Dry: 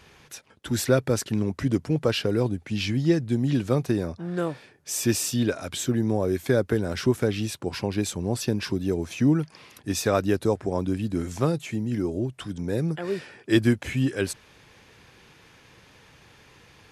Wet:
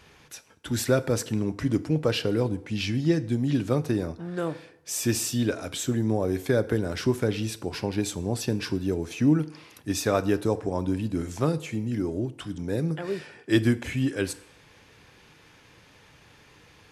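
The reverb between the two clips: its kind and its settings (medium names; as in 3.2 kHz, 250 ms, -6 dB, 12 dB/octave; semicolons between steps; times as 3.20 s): FDN reverb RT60 0.76 s, low-frequency decay 0.75×, high-frequency decay 0.75×, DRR 12.5 dB; trim -1.5 dB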